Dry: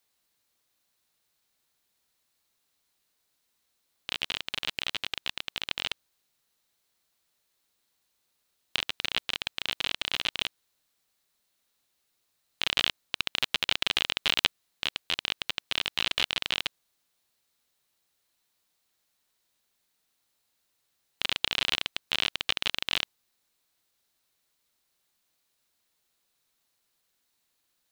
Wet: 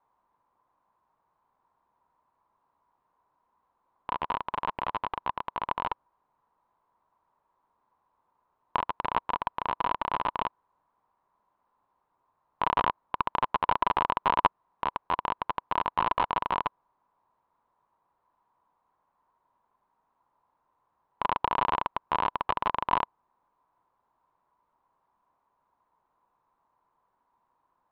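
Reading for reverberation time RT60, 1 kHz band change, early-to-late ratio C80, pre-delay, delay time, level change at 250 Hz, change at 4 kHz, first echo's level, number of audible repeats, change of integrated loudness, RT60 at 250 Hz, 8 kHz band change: no reverb audible, +16.5 dB, no reverb audible, no reverb audible, no echo audible, +5.0 dB, −16.5 dB, no echo audible, no echo audible, −0.5 dB, no reverb audible, below −30 dB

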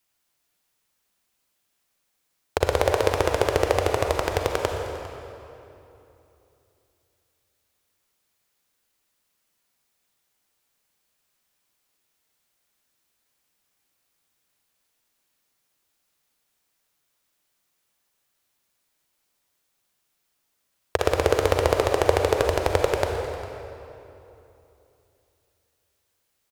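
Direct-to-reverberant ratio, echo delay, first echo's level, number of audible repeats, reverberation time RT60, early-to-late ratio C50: 2.5 dB, 402 ms, −18.5 dB, 1, 3.0 s, 2.5 dB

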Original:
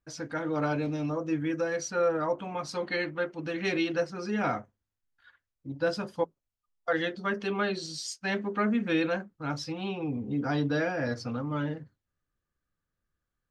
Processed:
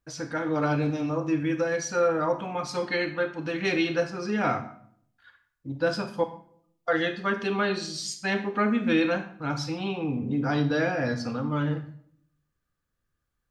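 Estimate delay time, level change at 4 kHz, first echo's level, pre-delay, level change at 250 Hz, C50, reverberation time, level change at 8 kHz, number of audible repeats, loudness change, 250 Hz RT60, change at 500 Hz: no echo audible, +3.5 dB, no echo audible, 28 ms, +3.5 dB, 10.5 dB, 0.60 s, +3.5 dB, no echo audible, +3.5 dB, 0.80 s, +3.0 dB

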